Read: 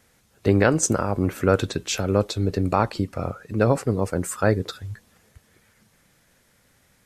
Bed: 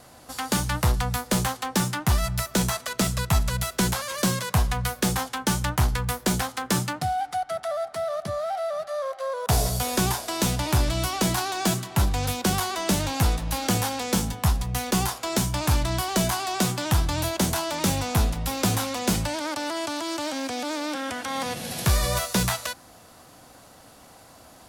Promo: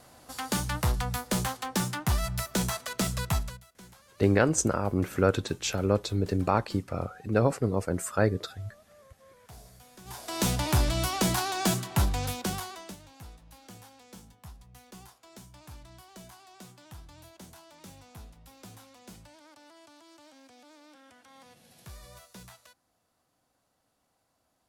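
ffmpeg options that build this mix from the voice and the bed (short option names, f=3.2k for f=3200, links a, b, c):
-filter_complex "[0:a]adelay=3750,volume=-4.5dB[a];[1:a]volume=20.5dB,afade=t=out:st=3.29:d=0.32:silence=0.0707946,afade=t=in:st=10.05:d=0.42:silence=0.0530884,afade=t=out:st=11.94:d=1.03:silence=0.0707946[b];[a][b]amix=inputs=2:normalize=0"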